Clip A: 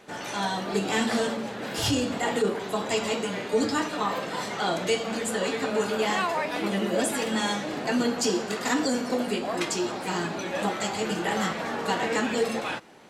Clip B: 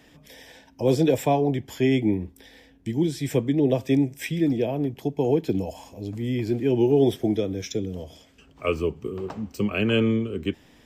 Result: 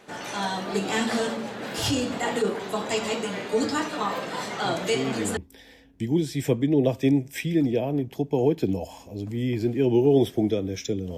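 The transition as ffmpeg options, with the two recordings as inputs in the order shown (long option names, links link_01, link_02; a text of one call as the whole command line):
ffmpeg -i cue0.wav -i cue1.wav -filter_complex "[1:a]asplit=2[link_01][link_02];[0:a]apad=whole_dur=11.17,atrim=end=11.17,atrim=end=5.372[link_03];[link_02]atrim=start=2.228:end=8.03[link_04];[link_01]atrim=start=1.51:end=2.23,asetpts=PTS-STARTPTS,volume=-8.5dB,afade=type=in:duration=0.004:curve=hsin,afade=type=out:start_time=0.716:duration=0.004:curve=hsin,adelay=205065S[link_05];[link_03][link_04]acrossfade=duration=0.004:curve1=hsin:curve2=hsin[link_06];[link_06][link_05]amix=inputs=2:normalize=0" out.wav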